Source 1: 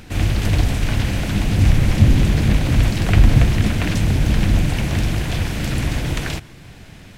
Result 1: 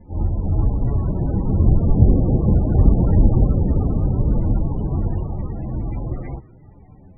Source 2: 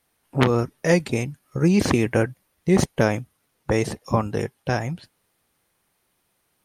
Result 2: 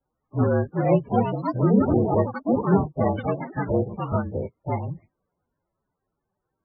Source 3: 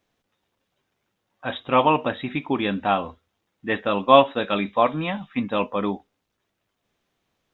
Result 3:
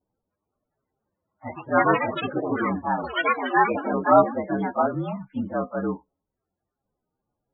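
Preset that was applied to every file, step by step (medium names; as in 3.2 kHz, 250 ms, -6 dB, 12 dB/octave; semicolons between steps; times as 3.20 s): frequency axis rescaled in octaves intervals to 114%; low-pass 1.6 kHz 12 dB/octave; ever faster or slower copies 481 ms, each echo +5 st, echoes 3; loudest bins only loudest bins 32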